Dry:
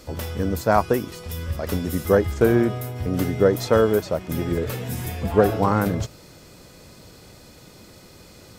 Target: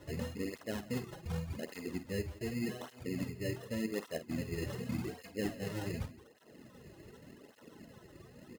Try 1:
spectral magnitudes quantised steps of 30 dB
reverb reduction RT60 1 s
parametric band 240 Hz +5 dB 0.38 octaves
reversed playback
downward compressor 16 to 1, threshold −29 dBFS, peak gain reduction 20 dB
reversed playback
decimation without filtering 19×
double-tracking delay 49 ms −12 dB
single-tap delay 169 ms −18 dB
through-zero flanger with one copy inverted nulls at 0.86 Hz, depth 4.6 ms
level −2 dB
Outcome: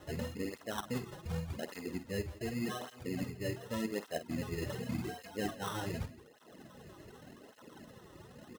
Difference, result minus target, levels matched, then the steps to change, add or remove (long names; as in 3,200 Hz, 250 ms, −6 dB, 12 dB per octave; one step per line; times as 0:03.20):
1,000 Hz band +6.5 dB
add after reverb reduction: Butterworth band-reject 1,000 Hz, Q 0.88